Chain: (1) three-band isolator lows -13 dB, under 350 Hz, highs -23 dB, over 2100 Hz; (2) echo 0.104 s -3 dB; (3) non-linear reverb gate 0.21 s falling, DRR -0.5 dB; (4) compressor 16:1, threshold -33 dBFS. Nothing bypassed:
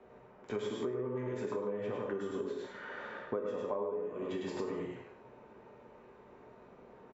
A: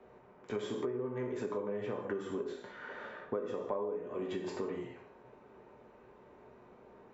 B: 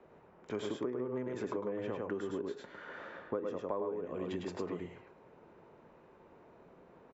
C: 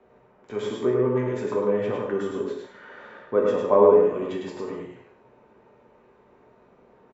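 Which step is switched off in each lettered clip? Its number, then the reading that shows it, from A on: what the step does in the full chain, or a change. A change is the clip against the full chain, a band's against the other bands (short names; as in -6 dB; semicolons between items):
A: 2, momentary loudness spread change +1 LU; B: 3, crest factor change +2.5 dB; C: 4, mean gain reduction 9.0 dB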